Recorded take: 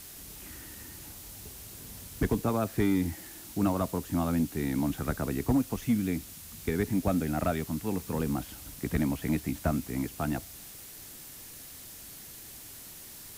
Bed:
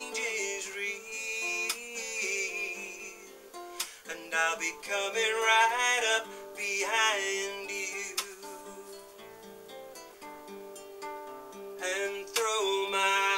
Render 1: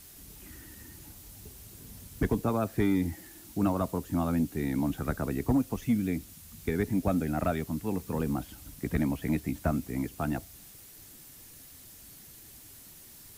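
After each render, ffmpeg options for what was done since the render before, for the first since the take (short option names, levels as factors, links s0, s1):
-af "afftdn=nr=6:nf=-47"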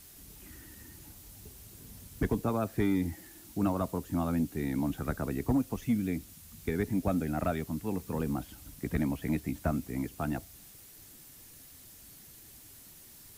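-af "volume=0.794"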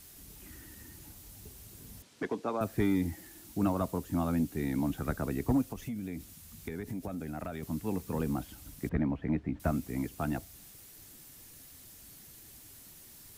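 -filter_complex "[0:a]asettb=1/sr,asplit=3[s0][s1][s2];[s0]atrim=end=2.024[s3];[s1]atrim=start=2.02:end=2.61,asetpts=PTS-STARTPTS,afade=t=in:d=0.004:c=qsin,afade=t=out:st=0.586:d=0.004:c=qsin,highpass=340,lowpass=5400[s4];[s2]atrim=start=2.606[s5];[s3][s4]acrossfade=d=0.004:c1=hsin:c2=qsin[s6];[s6][s5]acrossfade=d=0.004:c1=qsin:c2=hsin,asettb=1/sr,asplit=3[s7][s8][s9];[s7]atrim=end=5.664[s10];[s8]atrim=start=5.66:end=7.63,asetpts=PTS-STARTPTS,afade=t=in:d=0.004:c=qsin,afade=t=out:st=1.966:d=0.004:c=qsin,acompressor=threshold=0.02:ratio=6:attack=3.2:release=140:knee=1:detection=peak[s11];[s9]atrim=start=7.626[s12];[s10][s11]acrossfade=d=0.004:c1=hsin:c2=qsin[s13];[s13][s12]acrossfade=d=0.004:c1=qsin:c2=hsin,asettb=1/sr,asplit=3[s14][s15][s16];[s14]atrim=end=8.894[s17];[s15]atrim=start=8.89:end=9.6,asetpts=PTS-STARTPTS,afade=t=in:d=0.004:c=qsin,afade=t=out:st=0.706:d=0.004:c=qsin,lowpass=1800[s18];[s16]atrim=start=9.596[s19];[s17][s18]acrossfade=d=0.004:c1=hsin:c2=qsin[s20];[s20][s19]acrossfade=d=0.004:c1=qsin:c2=hsin"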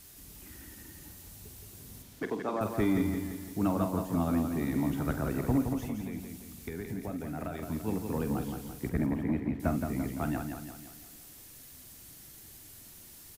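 -filter_complex "[0:a]asplit=2[s0][s1];[s1]adelay=47,volume=0.282[s2];[s0][s2]amix=inputs=2:normalize=0,aecho=1:1:170|340|510|680|850|1020:0.501|0.246|0.12|0.059|0.0289|0.0142"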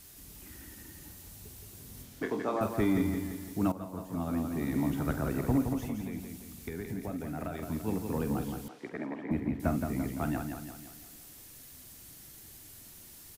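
-filter_complex "[0:a]asettb=1/sr,asplit=3[s0][s1][s2];[s0]atrim=end=1.954[s3];[s1]atrim=start=1.95:end=2.66,asetpts=PTS-STARTPTS,afade=t=in:d=0.004:c=qsin,afade=t=out:st=0.706:d=0.004:c=qsin,asplit=2[s4][s5];[s5]adelay=24,volume=0.562[s6];[s4][s6]amix=inputs=2:normalize=0,atrim=end_sample=31311[s7];[s2]atrim=start=2.656[s8];[s3][s7]acrossfade=d=0.004:c1=hsin:c2=qsin[s9];[s9][s8]acrossfade=d=0.004:c1=qsin:c2=hsin,asettb=1/sr,asplit=3[s10][s11][s12];[s10]atrim=end=8.684[s13];[s11]atrim=start=8.68:end=9.31,asetpts=PTS-STARTPTS,afade=t=in:d=0.004:c=qsin,afade=t=out:st=0.626:d=0.004:c=qsin,highpass=400,lowpass=4100[s14];[s12]atrim=start=9.306[s15];[s13][s14]acrossfade=d=0.004:c1=hsin:c2=qsin[s16];[s16][s15]acrossfade=d=0.004:c1=qsin:c2=hsin,asplit=2[s17][s18];[s17]atrim=end=3.72,asetpts=PTS-STARTPTS,afade=t=out:st=3.716:d=0.004:c=hsin:silence=0.199526[s19];[s18]atrim=start=3.72,asetpts=PTS-STARTPTS,afade=t=in:d=1.09:silence=0.199526[s20];[s19][s20]concat=n=2:v=0:a=1"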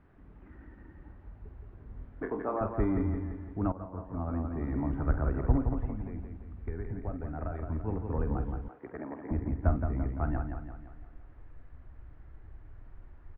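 -af "lowpass=f=1600:w=0.5412,lowpass=f=1600:w=1.3066,asubboost=boost=11:cutoff=55"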